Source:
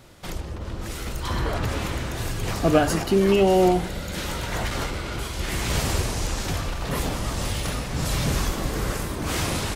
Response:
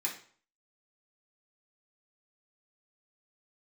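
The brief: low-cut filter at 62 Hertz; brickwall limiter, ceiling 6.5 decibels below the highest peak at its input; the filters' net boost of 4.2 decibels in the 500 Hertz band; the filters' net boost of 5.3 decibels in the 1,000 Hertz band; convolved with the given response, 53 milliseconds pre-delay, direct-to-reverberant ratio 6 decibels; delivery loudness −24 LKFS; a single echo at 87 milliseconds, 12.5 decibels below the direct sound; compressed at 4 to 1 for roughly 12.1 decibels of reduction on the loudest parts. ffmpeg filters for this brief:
-filter_complex "[0:a]highpass=62,equalizer=frequency=500:width_type=o:gain=4.5,equalizer=frequency=1000:width_type=o:gain=5.5,acompressor=threshold=-25dB:ratio=4,alimiter=limit=-21.5dB:level=0:latency=1,aecho=1:1:87:0.237,asplit=2[link_01][link_02];[1:a]atrim=start_sample=2205,adelay=53[link_03];[link_02][link_03]afir=irnorm=-1:irlink=0,volume=-9.5dB[link_04];[link_01][link_04]amix=inputs=2:normalize=0,volume=6dB"

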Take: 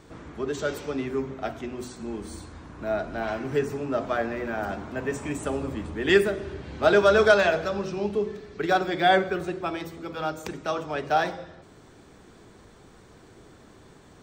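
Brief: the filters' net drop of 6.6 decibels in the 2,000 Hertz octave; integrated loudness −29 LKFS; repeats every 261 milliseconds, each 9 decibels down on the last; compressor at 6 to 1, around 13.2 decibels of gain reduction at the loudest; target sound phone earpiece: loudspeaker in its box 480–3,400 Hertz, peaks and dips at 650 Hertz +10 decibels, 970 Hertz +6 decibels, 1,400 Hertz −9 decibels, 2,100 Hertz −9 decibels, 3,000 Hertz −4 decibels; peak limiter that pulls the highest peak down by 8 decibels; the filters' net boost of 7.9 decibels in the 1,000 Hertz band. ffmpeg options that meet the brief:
ffmpeg -i in.wav -af "equalizer=frequency=1000:width_type=o:gain=7,equalizer=frequency=2000:width_type=o:gain=-3.5,acompressor=threshold=-26dB:ratio=6,alimiter=limit=-23.5dB:level=0:latency=1,highpass=480,equalizer=frequency=650:width_type=q:width=4:gain=10,equalizer=frequency=970:width_type=q:width=4:gain=6,equalizer=frequency=1400:width_type=q:width=4:gain=-9,equalizer=frequency=2100:width_type=q:width=4:gain=-9,equalizer=frequency=3000:width_type=q:width=4:gain=-4,lowpass=frequency=3400:width=0.5412,lowpass=frequency=3400:width=1.3066,aecho=1:1:261|522|783|1044:0.355|0.124|0.0435|0.0152,volume=2.5dB" out.wav

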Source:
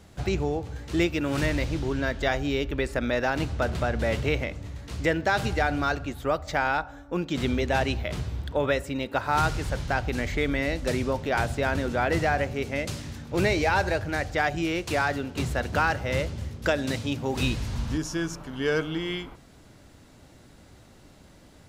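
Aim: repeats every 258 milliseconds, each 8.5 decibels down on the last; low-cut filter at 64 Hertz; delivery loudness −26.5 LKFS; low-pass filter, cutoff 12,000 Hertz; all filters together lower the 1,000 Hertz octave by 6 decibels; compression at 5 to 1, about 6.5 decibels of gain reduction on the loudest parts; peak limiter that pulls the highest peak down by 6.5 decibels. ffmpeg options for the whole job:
ffmpeg -i in.wav -af "highpass=64,lowpass=12000,equalizer=frequency=1000:width_type=o:gain=-9,acompressor=threshold=-28dB:ratio=5,alimiter=level_in=0.5dB:limit=-24dB:level=0:latency=1,volume=-0.5dB,aecho=1:1:258|516|774|1032:0.376|0.143|0.0543|0.0206,volume=8dB" out.wav

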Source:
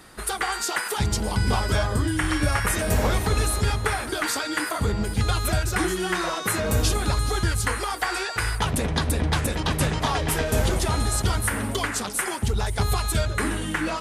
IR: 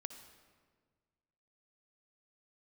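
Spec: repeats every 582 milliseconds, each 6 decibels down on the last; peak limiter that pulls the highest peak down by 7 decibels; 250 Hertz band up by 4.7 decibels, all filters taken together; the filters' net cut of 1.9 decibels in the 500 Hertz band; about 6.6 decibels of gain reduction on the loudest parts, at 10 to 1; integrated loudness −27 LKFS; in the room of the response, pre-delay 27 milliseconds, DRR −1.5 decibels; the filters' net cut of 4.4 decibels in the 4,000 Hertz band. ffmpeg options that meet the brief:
-filter_complex "[0:a]equalizer=frequency=250:width_type=o:gain=8,equalizer=frequency=500:width_type=o:gain=-5.5,equalizer=frequency=4000:width_type=o:gain=-5.5,acompressor=threshold=-23dB:ratio=10,alimiter=limit=-21dB:level=0:latency=1,aecho=1:1:582|1164|1746|2328|2910|3492:0.501|0.251|0.125|0.0626|0.0313|0.0157,asplit=2[link_01][link_02];[1:a]atrim=start_sample=2205,adelay=27[link_03];[link_02][link_03]afir=irnorm=-1:irlink=0,volume=5dB[link_04];[link_01][link_04]amix=inputs=2:normalize=0,volume=-1.5dB"

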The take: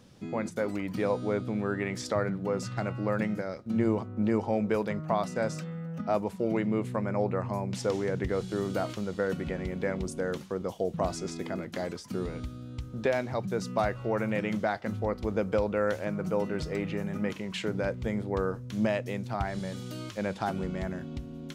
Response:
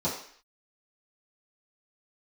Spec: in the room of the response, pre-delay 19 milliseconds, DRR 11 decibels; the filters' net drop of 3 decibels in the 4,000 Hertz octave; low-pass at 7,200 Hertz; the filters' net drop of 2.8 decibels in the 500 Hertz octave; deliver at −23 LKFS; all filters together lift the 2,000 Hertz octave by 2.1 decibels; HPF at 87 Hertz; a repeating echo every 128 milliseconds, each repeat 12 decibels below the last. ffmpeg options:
-filter_complex "[0:a]highpass=87,lowpass=7200,equalizer=frequency=500:width_type=o:gain=-3.5,equalizer=frequency=2000:width_type=o:gain=4,equalizer=frequency=4000:width_type=o:gain=-5,aecho=1:1:128|256|384:0.251|0.0628|0.0157,asplit=2[link_01][link_02];[1:a]atrim=start_sample=2205,adelay=19[link_03];[link_02][link_03]afir=irnorm=-1:irlink=0,volume=-20dB[link_04];[link_01][link_04]amix=inputs=2:normalize=0,volume=8.5dB"

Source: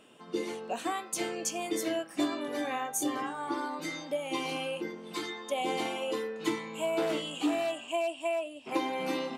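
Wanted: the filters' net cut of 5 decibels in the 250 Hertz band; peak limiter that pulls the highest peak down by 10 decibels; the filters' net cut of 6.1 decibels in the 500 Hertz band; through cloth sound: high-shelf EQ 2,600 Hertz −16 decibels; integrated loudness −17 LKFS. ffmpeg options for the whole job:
ffmpeg -i in.wav -af "equalizer=frequency=250:width_type=o:gain=-3.5,equalizer=frequency=500:width_type=o:gain=-6.5,alimiter=level_in=5.5dB:limit=-24dB:level=0:latency=1,volume=-5.5dB,highshelf=frequency=2600:gain=-16,volume=25.5dB" out.wav

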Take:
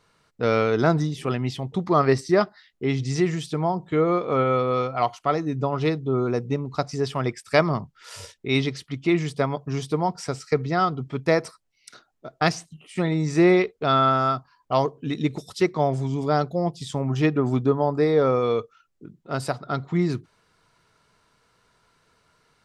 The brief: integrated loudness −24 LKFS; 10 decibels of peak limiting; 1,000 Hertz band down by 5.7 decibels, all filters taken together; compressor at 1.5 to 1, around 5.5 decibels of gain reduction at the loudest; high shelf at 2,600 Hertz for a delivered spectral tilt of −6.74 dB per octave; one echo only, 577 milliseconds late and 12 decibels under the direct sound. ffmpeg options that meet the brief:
ffmpeg -i in.wav -af "equalizer=frequency=1000:width_type=o:gain=-7,highshelf=frequency=2600:gain=-7.5,acompressor=threshold=-30dB:ratio=1.5,alimiter=limit=-23dB:level=0:latency=1,aecho=1:1:577:0.251,volume=9dB" out.wav

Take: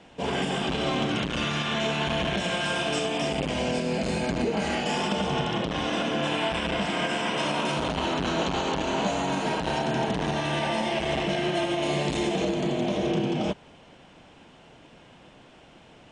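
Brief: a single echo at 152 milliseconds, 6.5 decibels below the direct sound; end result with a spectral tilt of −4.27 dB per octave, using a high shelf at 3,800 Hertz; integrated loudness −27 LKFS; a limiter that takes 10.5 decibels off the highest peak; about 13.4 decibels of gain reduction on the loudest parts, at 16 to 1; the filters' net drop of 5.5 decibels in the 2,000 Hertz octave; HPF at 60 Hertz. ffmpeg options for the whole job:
ffmpeg -i in.wav -af "highpass=60,equalizer=frequency=2000:width_type=o:gain=-6.5,highshelf=frequency=3800:gain=-3.5,acompressor=threshold=-36dB:ratio=16,alimiter=level_in=13.5dB:limit=-24dB:level=0:latency=1,volume=-13.5dB,aecho=1:1:152:0.473,volume=18.5dB" out.wav

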